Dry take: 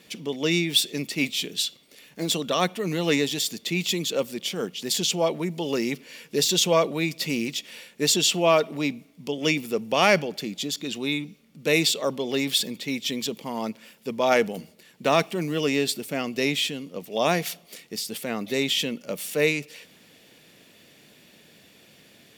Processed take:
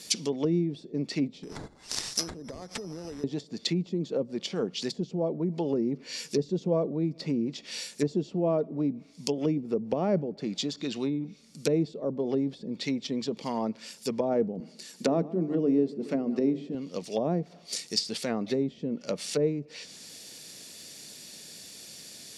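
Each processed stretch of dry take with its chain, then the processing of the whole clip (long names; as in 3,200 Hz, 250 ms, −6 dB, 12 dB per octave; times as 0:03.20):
0:01.43–0:03.24: downward compressor 12 to 1, threshold −34 dBFS + bass and treble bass −2 dB, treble +11 dB + bad sample-rate conversion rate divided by 8×, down none, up zero stuff
0:14.60–0:16.75: high-pass with resonance 210 Hz, resonance Q 1.5 + mains-hum notches 50/100/150/200/250/300/350/400/450 Hz + repeating echo 139 ms, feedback 57%, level −18.5 dB
whole clip: treble cut that deepens with the level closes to 430 Hz, closed at −22.5 dBFS; flat-topped bell 6,800 Hz +15.5 dB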